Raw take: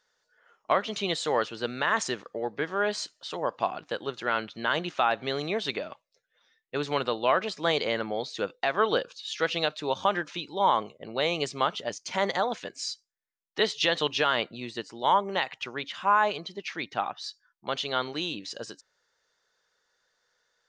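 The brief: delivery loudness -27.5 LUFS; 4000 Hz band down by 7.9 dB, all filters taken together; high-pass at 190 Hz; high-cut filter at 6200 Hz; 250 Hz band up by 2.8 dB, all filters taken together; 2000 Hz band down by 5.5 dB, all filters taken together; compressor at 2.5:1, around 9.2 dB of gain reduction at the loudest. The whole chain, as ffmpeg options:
-af "highpass=190,lowpass=6.2k,equalizer=f=250:t=o:g=5.5,equalizer=f=2k:t=o:g=-6,equalizer=f=4k:t=o:g=-7.5,acompressor=threshold=-33dB:ratio=2.5,volume=9.5dB"

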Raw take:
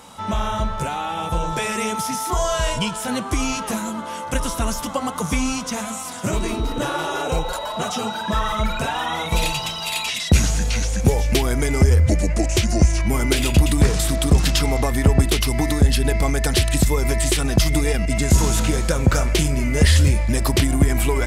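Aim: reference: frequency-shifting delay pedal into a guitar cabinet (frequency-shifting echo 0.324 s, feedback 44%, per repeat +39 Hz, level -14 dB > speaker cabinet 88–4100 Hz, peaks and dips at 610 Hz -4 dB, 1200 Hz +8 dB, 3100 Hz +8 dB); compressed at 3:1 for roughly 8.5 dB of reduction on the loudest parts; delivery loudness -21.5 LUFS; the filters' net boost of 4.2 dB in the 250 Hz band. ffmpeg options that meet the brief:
-filter_complex "[0:a]equalizer=f=250:t=o:g=5.5,acompressor=threshold=-20dB:ratio=3,asplit=5[a][b][c][d][e];[b]adelay=324,afreqshift=39,volume=-14dB[f];[c]adelay=648,afreqshift=78,volume=-21.1dB[g];[d]adelay=972,afreqshift=117,volume=-28.3dB[h];[e]adelay=1296,afreqshift=156,volume=-35.4dB[i];[a][f][g][h][i]amix=inputs=5:normalize=0,highpass=88,equalizer=f=610:t=q:w=4:g=-4,equalizer=f=1.2k:t=q:w=4:g=8,equalizer=f=3.1k:t=q:w=4:g=8,lowpass=f=4.1k:w=0.5412,lowpass=f=4.1k:w=1.3066,volume=2.5dB"

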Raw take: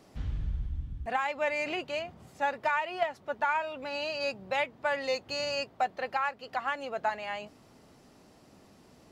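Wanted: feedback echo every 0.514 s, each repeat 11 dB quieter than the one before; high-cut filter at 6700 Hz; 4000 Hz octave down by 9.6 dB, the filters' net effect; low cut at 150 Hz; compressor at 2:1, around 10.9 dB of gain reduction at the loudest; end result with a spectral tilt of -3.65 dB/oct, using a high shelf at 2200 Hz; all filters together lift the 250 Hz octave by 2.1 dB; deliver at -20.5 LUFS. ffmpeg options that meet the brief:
-af "highpass=150,lowpass=6.7k,equalizer=f=250:t=o:g=3.5,highshelf=f=2.2k:g=-7.5,equalizer=f=4k:t=o:g=-5.5,acompressor=threshold=-45dB:ratio=2,aecho=1:1:514|1028|1542:0.282|0.0789|0.0221,volume=22.5dB"

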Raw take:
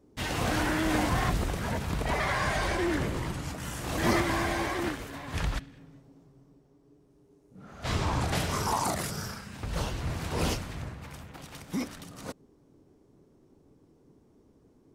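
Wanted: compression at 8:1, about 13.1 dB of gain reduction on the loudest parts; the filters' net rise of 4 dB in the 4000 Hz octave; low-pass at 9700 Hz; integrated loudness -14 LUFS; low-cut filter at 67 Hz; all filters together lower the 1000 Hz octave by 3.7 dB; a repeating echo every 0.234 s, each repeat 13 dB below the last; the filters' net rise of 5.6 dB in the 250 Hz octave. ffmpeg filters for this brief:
-af "highpass=67,lowpass=9.7k,equalizer=f=250:t=o:g=8,equalizer=f=1k:t=o:g=-5.5,equalizer=f=4k:t=o:g=5.5,acompressor=threshold=-31dB:ratio=8,aecho=1:1:234|468|702:0.224|0.0493|0.0108,volume=21.5dB"

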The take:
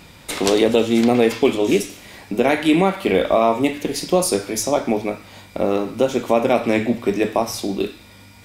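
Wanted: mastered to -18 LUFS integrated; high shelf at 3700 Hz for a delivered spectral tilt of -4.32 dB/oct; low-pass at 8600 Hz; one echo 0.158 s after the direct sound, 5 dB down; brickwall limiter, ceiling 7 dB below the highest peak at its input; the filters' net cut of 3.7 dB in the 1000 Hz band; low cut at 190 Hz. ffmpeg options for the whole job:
-af "highpass=190,lowpass=8.6k,equalizer=f=1k:t=o:g=-5,highshelf=f=3.7k:g=-8.5,alimiter=limit=-12dB:level=0:latency=1,aecho=1:1:158:0.562,volume=5dB"

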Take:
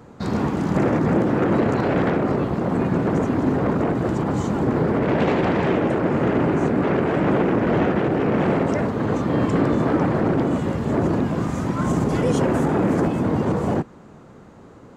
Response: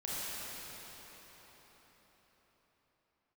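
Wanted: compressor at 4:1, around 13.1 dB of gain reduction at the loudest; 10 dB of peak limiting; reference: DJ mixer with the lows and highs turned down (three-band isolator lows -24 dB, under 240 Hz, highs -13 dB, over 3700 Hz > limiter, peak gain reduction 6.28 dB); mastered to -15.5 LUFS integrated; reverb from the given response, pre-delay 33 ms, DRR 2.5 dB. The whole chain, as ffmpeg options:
-filter_complex "[0:a]acompressor=threshold=-32dB:ratio=4,alimiter=level_in=7dB:limit=-24dB:level=0:latency=1,volume=-7dB,asplit=2[a][b];[1:a]atrim=start_sample=2205,adelay=33[c];[b][c]afir=irnorm=-1:irlink=0,volume=-7dB[d];[a][d]amix=inputs=2:normalize=0,acrossover=split=240 3700:gain=0.0631 1 0.224[e][f][g];[e][f][g]amix=inputs=3:normalize=0,volume=26dB,alimiter=limit=-6.5dB:level=0:latency=1"

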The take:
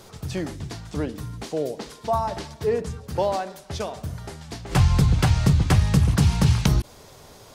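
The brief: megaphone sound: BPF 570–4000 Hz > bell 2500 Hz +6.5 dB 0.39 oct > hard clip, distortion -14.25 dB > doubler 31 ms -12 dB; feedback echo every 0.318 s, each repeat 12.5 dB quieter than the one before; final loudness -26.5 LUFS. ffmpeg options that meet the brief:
-filter_complex "[0:a]highpass=570,lowpass=4k,equalizer=f=2.5k:t=o:w=0.39:g=6.5,aecho=1:1:318|636|954:0.237|0.0569|0.0137,asoftclip=type=hard:threshold=-21.5dB,asplit=2[a][b];[b]adelay=31,volume=-12dB[c];[a][c]amix=inputs=2:normalize=0,volume=6dB"

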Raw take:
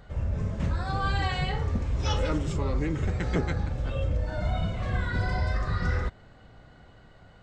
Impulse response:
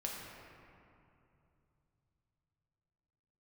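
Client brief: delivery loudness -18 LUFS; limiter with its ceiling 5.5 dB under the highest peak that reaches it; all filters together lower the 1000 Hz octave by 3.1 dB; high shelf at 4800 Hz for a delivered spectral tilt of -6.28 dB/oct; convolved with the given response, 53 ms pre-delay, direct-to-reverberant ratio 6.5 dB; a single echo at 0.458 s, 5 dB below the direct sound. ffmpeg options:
-filter_complex "[0:a]equalizer=f=1k:t=o:g=-4,highshelf=f=4.8k:g=-7,alimiter=limit=-20.5dB:level=0:latency=1,aecho=1:1:458:0.562,asplit=2[a][b];[1:a]atrim=start_sample=2205,adelay=53[c];[b][c]afir=irnorm=-1:irlink=0,volume=-7.5dB[d];[a][d]amix=inputs=2:normalize=0,volume=11dB"

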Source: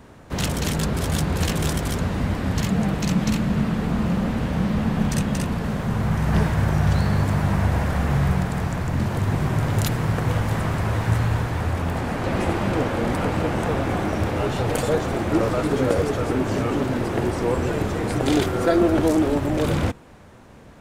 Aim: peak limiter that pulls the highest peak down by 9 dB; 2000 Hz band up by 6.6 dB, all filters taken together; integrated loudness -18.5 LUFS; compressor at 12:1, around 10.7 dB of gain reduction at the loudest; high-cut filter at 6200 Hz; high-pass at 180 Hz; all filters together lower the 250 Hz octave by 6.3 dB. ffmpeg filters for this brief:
-af "highpass=180,lowpass=6.2k,equalizer=f=250:t=o:g=-7,equalizer=f=2k:t=o:g=8.5,acompressor=threshold=-24dB:ratio=12,volume=11.5dB,alimiter=limit=-9.5dB:level=0:latency=1"

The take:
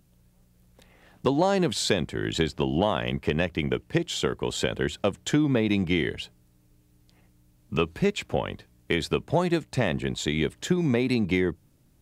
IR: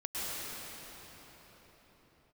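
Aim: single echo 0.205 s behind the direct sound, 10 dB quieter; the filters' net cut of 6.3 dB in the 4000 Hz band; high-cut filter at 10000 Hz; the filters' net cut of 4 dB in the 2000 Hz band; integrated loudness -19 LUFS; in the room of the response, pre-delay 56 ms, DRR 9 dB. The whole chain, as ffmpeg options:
-filter_complex "[0:a]lowpass=10k,equalizer=f=2k:t=o:g=-3,equalizer=f=4k:t=o:g=-7,aecho=1:1:205:0.316,asplit=2[a][b];[1:a]atrim=start_sample=2205,adelay=56[c];[b][c]afir=irnorm=-1:irlink=0,volume=-15dB[d];[a][d]amix=inputs=2:normalize=0,volume=7.5dB"

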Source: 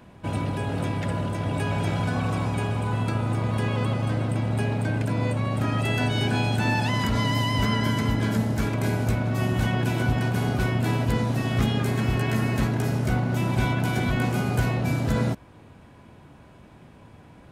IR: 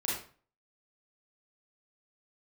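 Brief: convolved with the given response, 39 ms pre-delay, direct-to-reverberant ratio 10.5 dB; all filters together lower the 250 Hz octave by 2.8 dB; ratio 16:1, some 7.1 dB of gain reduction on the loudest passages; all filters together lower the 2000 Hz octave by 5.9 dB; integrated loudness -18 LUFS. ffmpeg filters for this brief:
-filter_complex "[0:a]equalizer=f=250:t=o:g=-3.5,equalizer=f=2k:t=o:g=-8,acompressor=threshold=-26dB:ratio=16,asplit=2[a][b];[1:a]atrim=start_sample=2205,adelay=39[c];[b][c]afir=irnorm=-1:irlink=0,volume=-16dB[d];[a][d]amix=inputs=2:normalize=0,volume=13dB"

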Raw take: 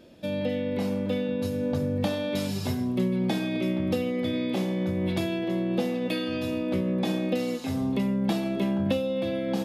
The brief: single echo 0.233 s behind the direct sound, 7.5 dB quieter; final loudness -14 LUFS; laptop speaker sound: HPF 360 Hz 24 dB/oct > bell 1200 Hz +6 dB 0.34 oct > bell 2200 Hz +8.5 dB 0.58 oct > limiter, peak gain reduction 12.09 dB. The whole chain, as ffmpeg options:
-af "highpass=f=360:w=0.5412,highpass=f=360:w=1.3066,equalizer=f=1.2k:t=o:w=0.34:g=6,equalizer=f=2.2k:t=o:w=0.58:g=8.5,aecho=1:1:233:0.422,volume=21dB,alimiter=limit=-6dB:level=0:latency=1"

